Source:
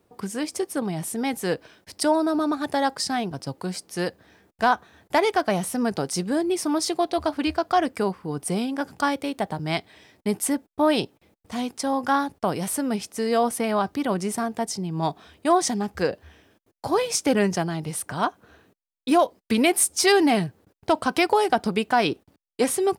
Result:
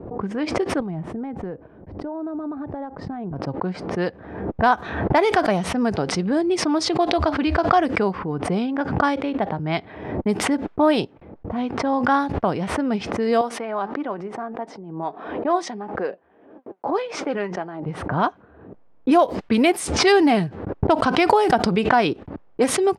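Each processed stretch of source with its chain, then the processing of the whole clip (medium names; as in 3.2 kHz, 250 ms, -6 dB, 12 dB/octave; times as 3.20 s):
0.80–3.36 s: compression, threshold -33 dBFS + tilt EQ -2 dB/octave
13.41–17.86 s: high-pass 320 Hz + flange 1.6 Hz, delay 3.1 ms, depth 3.1 ms, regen +74%
whole clip: low-pass 2.8 kHz 6 dB/octave; level-controlled noise filter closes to 660 Hz, open at -17.5 dBFS; swell ahead of each attack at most 62 dB/s; trim +3 dB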